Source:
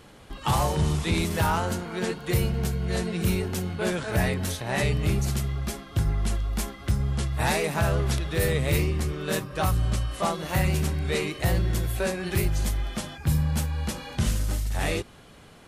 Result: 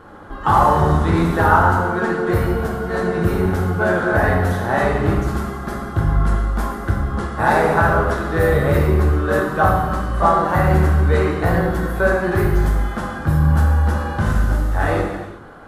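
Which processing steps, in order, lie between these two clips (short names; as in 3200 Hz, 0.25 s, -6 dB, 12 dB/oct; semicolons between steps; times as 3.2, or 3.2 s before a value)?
EQ curve 130 Hz 0 dB, 730 Hz +4 dB, 1500 Hz +8 dB, 2400 Hz -12 dB, 3400 Hz -11 dB, 7800 Hz -15 dB, 13000 Hz -12 dB; non-linear reverb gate 0.43 s falling, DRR -1.5 dB; gain +4.5 dB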